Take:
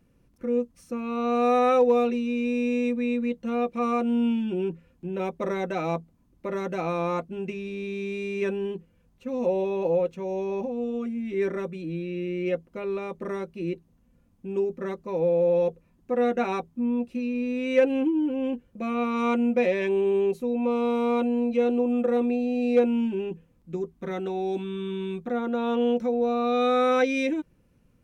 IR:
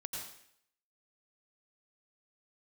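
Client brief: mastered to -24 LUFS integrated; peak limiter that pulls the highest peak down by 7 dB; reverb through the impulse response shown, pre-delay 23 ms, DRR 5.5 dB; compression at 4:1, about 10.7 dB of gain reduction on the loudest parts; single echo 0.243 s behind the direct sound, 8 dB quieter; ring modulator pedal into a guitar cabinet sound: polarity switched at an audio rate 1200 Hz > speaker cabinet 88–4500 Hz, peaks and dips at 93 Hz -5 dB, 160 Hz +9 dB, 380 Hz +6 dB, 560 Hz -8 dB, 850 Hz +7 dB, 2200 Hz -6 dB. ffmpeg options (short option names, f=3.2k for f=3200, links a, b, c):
-filter_complex "[0:a]acompressor=threshold=-28dB:ratio=4,alimiter=level_in=2dB:limit=-24dB:level=0:latency=1,volume=-2dB,aecho=1:1:243:0.398,asplit=2[a][b];[1:a]atrim=start_sample=2205,adelay=23[c];[b][c]afir=irnorm=-1:irlink=0,volume=-5dB[d];[a][d]amix=inputs=2:normalize=0,aeval=exprs='val(0)*sgn(sin(2*PI*1200*n/s))':c=same,highpass=88,equalizer=f=93:t=q:w=4:g=-5,equalizer=f=160:t=q:w=4:g=9,equalizer=f=380:t=q:w=4:g=6,equalizer=f=560:t=q:w=4:g=-8,equalizer=f=850:t=q:w=4:g=7,equalizer=f=2.2k:t=q:w=4:g=-6,lowpass=f=4.5k:w=0.5412,lowpass=f=4.5k:w=1.3066,volume=5.5dB"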